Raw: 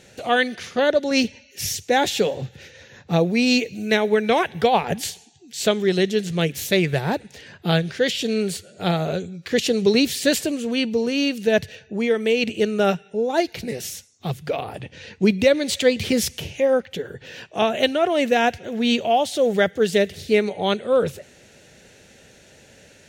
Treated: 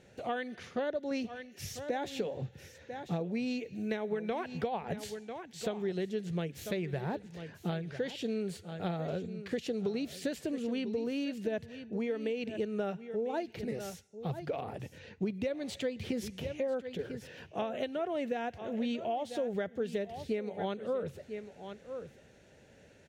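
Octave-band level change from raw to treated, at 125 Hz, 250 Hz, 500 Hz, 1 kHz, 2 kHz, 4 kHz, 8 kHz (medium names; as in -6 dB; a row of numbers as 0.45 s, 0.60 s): -12.5 dB, -13.0 dB, -14.5 dB, -15.5 dB, -19.0 dB, -20.5 dB, -20.5 dB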